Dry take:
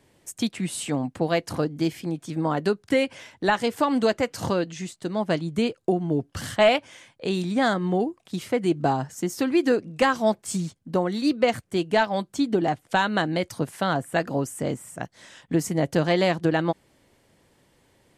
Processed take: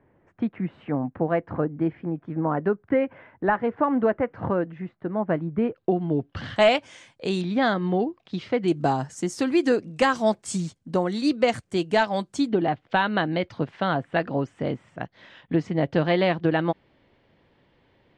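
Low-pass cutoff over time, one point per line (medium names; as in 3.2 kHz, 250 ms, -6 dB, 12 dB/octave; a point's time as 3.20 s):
low-pass 24 dB/octave
1.8 kHz
from 5.76 s 3.7 kHz
from 6.56 s 8.7 kHz
from 7.41 s 4.5 kHz
from 8.68 s 9.2 kHz
from 12.49 s 3.7 kHz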